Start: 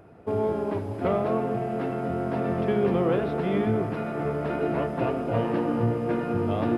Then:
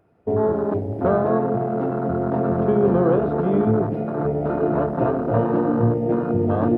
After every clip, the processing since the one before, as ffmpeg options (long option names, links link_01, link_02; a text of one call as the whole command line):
ffmpeg -i in.wav -af "afwtdn=0.0398,volume=6dB" out.wav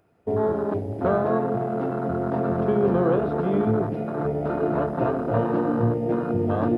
ffmpeg -i in.wav -af "highshelf=frequency=2100:gain=9,volume=-3.5dB" out.wav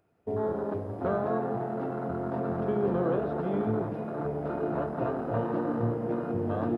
ffmpeg -i in.wav -filter_complex "[0:a]asplit=8[link_01][link_02][link_03][link_04][link_05][link_06][link_07][link_08];[link_02]adelay=174,afreqshift=96,volume=-14dB[link_09];[link_03]adelay=348,afreqshift=192,volume=-17.9dB[link_10];[link_04]adelay=522,afreqshift=288,volume=-21.8dB[link_11];[link_05]adelay=696,afreqshift=384,volume=-25.6dB[link_12];[link_06]adelay=870,afreqshift=480,volume=-29.5dB[link_13];[link_07]adelay=1044,afreqshift=576,volume=-33.4dB[link_14];[link_08]adelay=1218,afreqshift=672,volume=-37.3dB[link_15];[link_01][link_09][link_10][link_11][link_12][link_13][link_14][link_15]amix=inputs=8:normalize=0,volume=-7dB" out.wav